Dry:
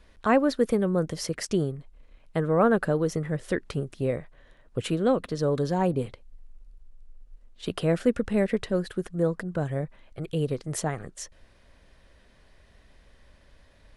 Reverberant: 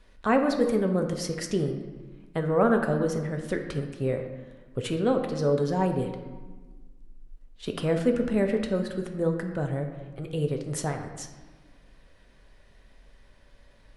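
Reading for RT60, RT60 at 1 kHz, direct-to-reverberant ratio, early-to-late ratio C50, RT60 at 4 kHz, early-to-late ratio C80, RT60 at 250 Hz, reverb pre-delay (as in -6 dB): 1.4 s, 1.3 s, 4.0 dB, 7.0 dB, 0.90 s, 9.0 dB, 2.0 s, 4 ms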